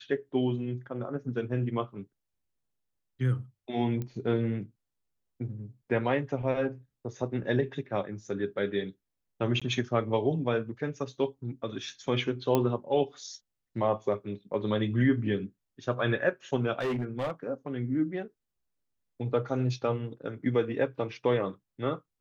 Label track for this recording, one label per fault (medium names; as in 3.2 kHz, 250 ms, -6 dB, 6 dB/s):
4.020000	4.020000	pop -23 dBFS
9.600000	9.620000	dropout 16 ms
12.550000	12.550000	pop -12 dBFS
16.800000	17.310000	clipped -27 dBFS